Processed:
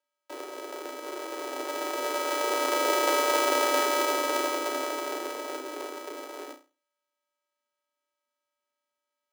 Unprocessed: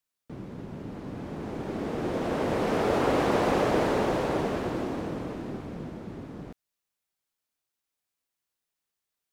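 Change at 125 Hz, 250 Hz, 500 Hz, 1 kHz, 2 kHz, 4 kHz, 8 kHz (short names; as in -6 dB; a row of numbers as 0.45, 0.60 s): under -40 dB, -7.5 dB, -0.5 dB, +3.0 dB, +4.5 dB, +8.5 dB, +13.5 dB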